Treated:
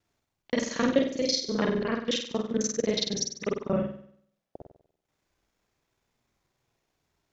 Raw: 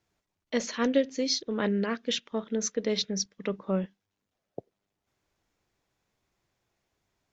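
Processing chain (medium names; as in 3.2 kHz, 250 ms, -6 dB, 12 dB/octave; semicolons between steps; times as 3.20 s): time reversed locally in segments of 33 ms; flutter echo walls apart 8.3 m, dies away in 0.65 s; transient shaper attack +2 dB, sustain -4 dB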